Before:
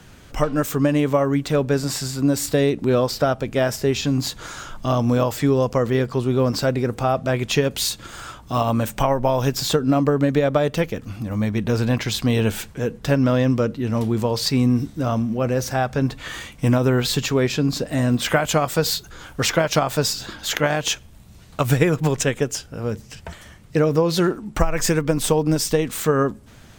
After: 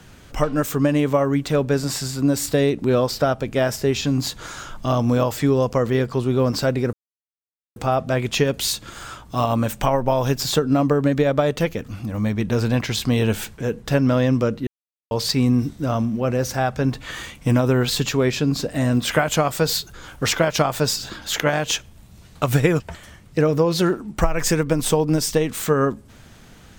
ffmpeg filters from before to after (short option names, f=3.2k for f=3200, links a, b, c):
-filter_complex "[0:a]asplit=5[a][b][c][d][e];[a]atrim=end=6.93,asetpts=PTS-STARTPTS,afade=t=out:st=6.926:d=0.004:c=hsin,apad=pad_dur=0.83[f];[b]atrim=start=6.93:end=13.84,asetpts=PTS-STARTPTS,afade=t=in:d=0.004:c=hsin,afade=t=out:st=6.906:d=0.004:c=hsin[g];[c]atrim=start=13.84:end=14.28,asetpts=PTS-STARTPTS,volume=0[h];[d]atrim=start=14.28:end=21.972,asetpts=PTS-STARTPTS,afade=t=in:d=0.004:c=hsin[i];[e]atrim=start=23.178[j];[f][g][h][i]concat=n=4:v=0:a=1[k];[k][j]acrossfade=d=0.004:c1=hsin:c2=hsin"